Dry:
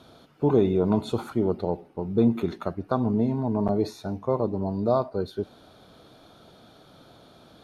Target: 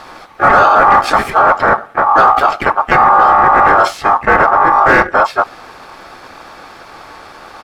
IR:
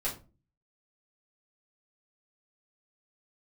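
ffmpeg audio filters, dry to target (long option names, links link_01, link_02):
-filter_complex "[0:a]asplit=4[link_01][link_02][link_03][link_04];[link_02]asetrate=29433,aresample=44100,atempo=1.49831,volume=-17dB[link_05];[link_03]asetrate=33038,aresample=44100,atempo=1.33484,volume=-2dB[link_06];[link_04]asetrate=66075,aresample=44100,atempo=0.66742,volume=-11dB[link_07];[link_01][link_05][link_06][link_07]amix=inputs=4:normalize=0,lowshelf=frequency=140:gain=6,asplit=2[link_08][link_09];[link_09]aeval=exprs='sgn(val(0))*max(abs(val(0))-0.0178,0)':channel_layout=same,volume=-7dB[link_10];[link_08][link_10]amix=inputs=2:normalize=0,aeval=exprs='val(0)*sin(2*PI*1000*n/s)':channel_layout=same,apsyclip=19dB,volume=-2dB"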